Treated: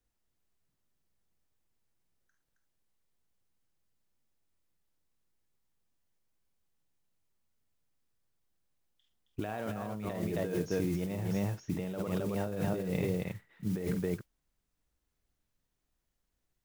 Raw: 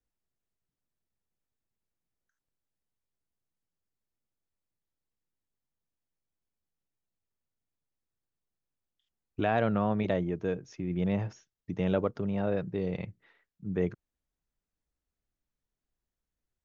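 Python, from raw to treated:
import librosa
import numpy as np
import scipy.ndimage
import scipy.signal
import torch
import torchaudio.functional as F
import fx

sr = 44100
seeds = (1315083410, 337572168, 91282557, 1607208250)

y = fx.mod_noise(x, sr, seeds[0], snr_db=22)
y = fx.echo_multitap(y, sr, ms=(47, 48, 110, 269), db=(-18.0, -8.5, -18.0, -5.5))
y = fx.over_compress(y, sr, threshold_db=-34.0, ratio=-1.0)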